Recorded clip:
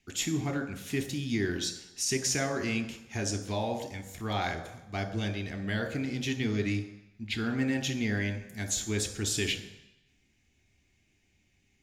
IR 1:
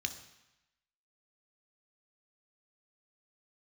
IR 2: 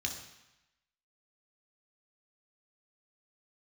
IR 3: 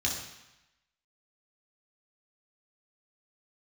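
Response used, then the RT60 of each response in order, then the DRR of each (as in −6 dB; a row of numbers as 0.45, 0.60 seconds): 1; 0.95, 0.95, 0.95 seconds; 7.0, 1.5, −2.5 decibels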